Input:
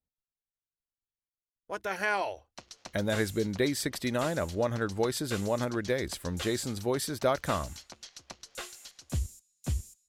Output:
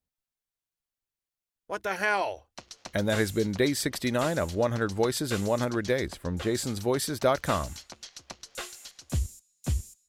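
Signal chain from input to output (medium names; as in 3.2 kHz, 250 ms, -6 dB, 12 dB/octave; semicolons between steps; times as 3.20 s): 6.07–6.55 s: treble shelf 2.6 kHz -11.5 dB; trim +3 dB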